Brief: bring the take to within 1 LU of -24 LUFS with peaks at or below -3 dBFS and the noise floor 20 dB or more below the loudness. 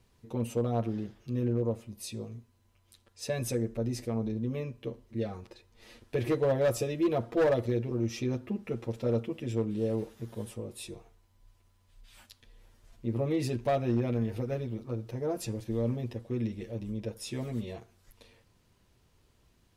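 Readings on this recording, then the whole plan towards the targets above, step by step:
clipped 0.5%; flat tops at -21.0 dBFS; loudness -32.5 LUFS; peak -21.0 dBFS; loudness target -24.0 LUFS
-> clip repair -21 dBFS; gain +8.5 dB

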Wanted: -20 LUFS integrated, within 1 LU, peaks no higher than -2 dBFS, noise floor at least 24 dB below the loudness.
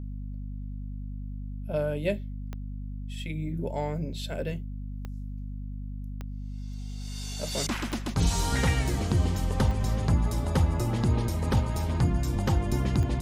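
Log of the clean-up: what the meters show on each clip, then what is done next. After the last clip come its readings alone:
clicks 6; hum 50 Hz; harmonics up to 250 Hz; hum level -33 dBFS; loudness -30.0 LUFS; peak -12.5 dBFS; loudness target -20.0 LUFS
-> de-click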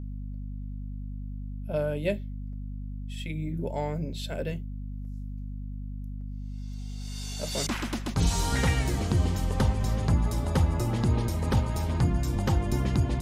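clicks 0; hum 50 Hz; harmonics up to 250 Hz; hum level -33 dBFS
-> notches 50/100/150/200/250 Hz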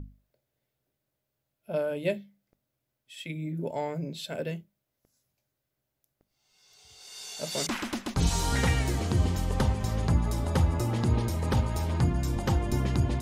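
hum none; loudness -29.0 LUFS; peak -13.0 dBFS; loudness target -20.0 LUFS
-> gain +9 dB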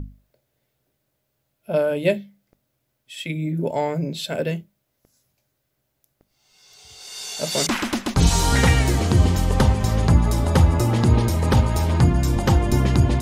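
loudness -20.0 LUFS; peak -4.0 dBFS; noise floor -74 dBFS

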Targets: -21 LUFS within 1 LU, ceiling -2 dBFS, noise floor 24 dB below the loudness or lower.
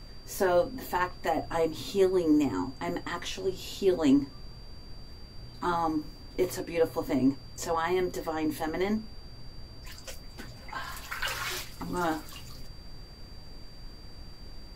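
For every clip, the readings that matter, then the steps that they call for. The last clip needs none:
steady tone 4700 Hz; tone level -53 dBFS; noise floor -47 dBFS; noise floor target -54 dBFS; loudness -30.0 LUFS; peak -13.5 dBFS; loudness target -21.0 LUFS
-> notch 4700 Hz, Q 30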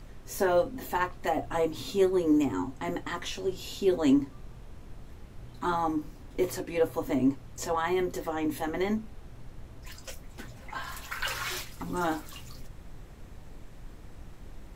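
steady tone none; noise floor -48 dBFS; noise floor target -54 dBFS
-> noise print and reduce 6 dB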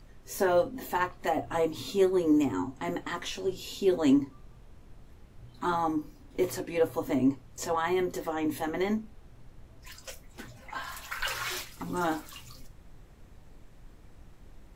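noise floor -54 dBFS; loudness -30.0 LUFS; peak -13.0 dBFS; loudness target -21.0 LUFS
-> gain +9 dB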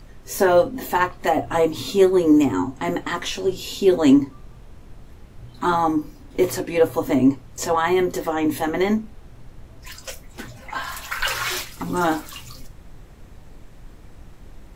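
loudness -21.0 LUFS; peak -4.0 dBFS; noise floor -45 dBFS

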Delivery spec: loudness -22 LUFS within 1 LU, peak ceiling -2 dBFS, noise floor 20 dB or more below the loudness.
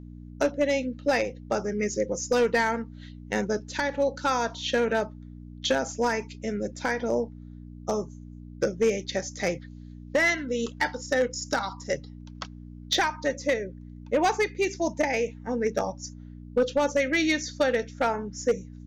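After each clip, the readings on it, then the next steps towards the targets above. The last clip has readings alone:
clipped 0.4%; flat tops at -16.0 dBFS; hum 60 Hz; harmonics up to 300 Hz; hum level -41 dBFS; loudness -27.5 LUFS; peak -16.0 dBFS; loudness target -22.0 LUFS
-> clip repair -16 dBFS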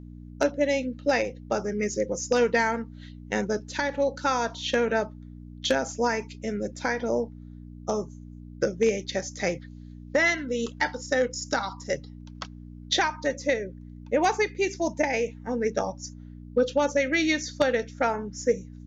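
clipped 0.0%; hum 60 Hz; harmonics up to 300 Hz; hum level -40 dBFS
-> de-hum 60 Hz, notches 5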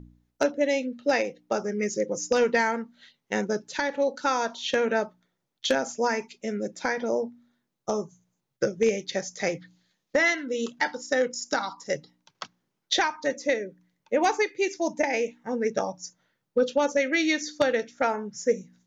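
hum none; loudness -27.0 LUFS; peak -7.5 dBFS; loudness target -22.0 LUFS
-> gain +5 dB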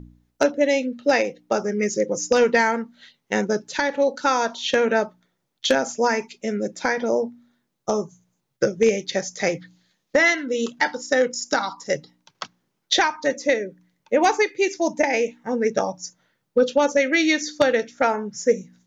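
loudness -22.0 LUFS; peak -2.5 dBFS; noise floor -75 dBFS

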